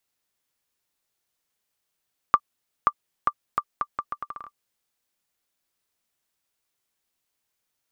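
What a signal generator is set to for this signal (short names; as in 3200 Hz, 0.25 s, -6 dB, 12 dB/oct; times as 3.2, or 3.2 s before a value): bouncing ball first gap 0.53 s, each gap 0.76, 1180 Hz, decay 58 ms -4.5 dBFS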